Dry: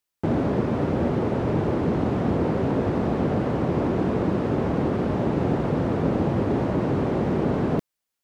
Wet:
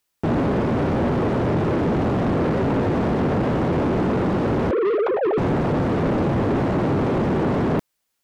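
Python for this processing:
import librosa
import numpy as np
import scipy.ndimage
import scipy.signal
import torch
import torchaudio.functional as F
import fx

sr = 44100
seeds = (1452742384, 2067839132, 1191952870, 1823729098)

y = fx.sine_speech(x, sr, at=(4.71, 5.38))
y = 10.0 ** (-25.0 / 20.0) * np.tanh(y / 10.0 ** (-25.0 / 20.0))
y = y * librosa.db_to_amplitude(8.0)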